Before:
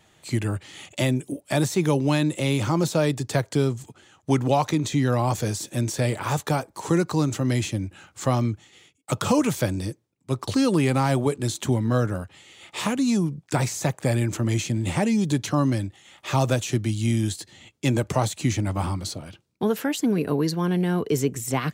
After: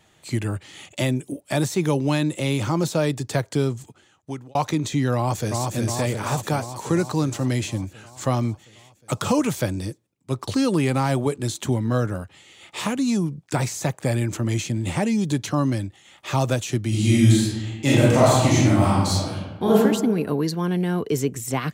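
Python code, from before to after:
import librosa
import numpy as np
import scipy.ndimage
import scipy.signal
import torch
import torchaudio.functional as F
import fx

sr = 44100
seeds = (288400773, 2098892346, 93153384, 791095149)

y = fx.echo_throw(x, sr, start_s=5.15, length_s=0.59, ms=360, feedback_pct=70, wet_db=-3.0)
y = fx.reverb_throw(y, sr, start_s=16.88, length_s=2.88, rt60_s=1.2, drr_db=-8.0)
y = fx.edit(y, sr, fx.fade_out_span(start_s=3.78, length_s=0.77), tone=tone)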